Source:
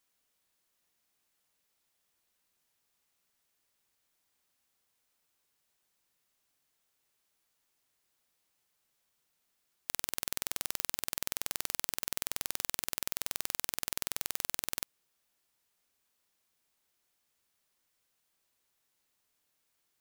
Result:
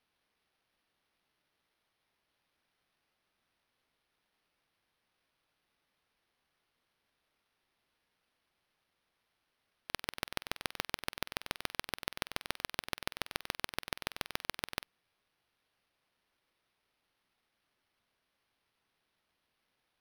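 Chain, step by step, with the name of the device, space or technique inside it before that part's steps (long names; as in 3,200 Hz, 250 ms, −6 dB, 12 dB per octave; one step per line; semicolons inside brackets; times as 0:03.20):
crushed at another speed (tape speed factor 0.5×; decimation without filtering 12×; tape speed factor 2×)
level −3 dB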